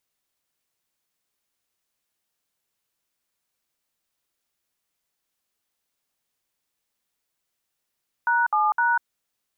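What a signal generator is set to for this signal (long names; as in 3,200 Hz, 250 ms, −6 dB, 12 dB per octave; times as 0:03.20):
touch tones "#7#", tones 195 ms, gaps 61 ms, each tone −20.5 dBFS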